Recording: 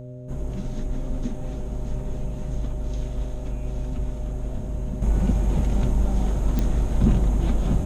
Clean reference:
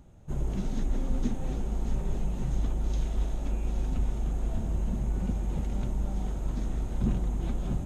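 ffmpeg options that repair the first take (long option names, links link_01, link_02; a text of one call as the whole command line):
ffmpeg -i in.wav -af "adeclick=threshold=4,bandreject=frequency=126.6:width_type=h:width=4,bandreject=frequency=253.2:width_type=h:width=4,bandreject=frequency=379.8:width_type=h:width=4,bandreject=frequency=506.4:width_type=h:width=4,bandreject=frequency=610:width=30,asetnsamples=nb_out_samples=441:pad=0,asendcmd='5.02 volume volume -8.5dB',volume=0dB" out.wav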